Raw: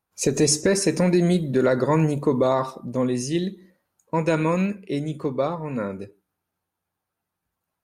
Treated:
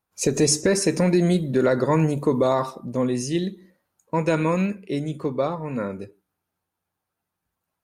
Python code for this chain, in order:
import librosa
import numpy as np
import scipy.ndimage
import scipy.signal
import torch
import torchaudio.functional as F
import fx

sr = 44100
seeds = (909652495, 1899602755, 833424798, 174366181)

y = fx.high_shelf(x, sr, hz=7600.0, db=6.5, at=(2.18, 2.69))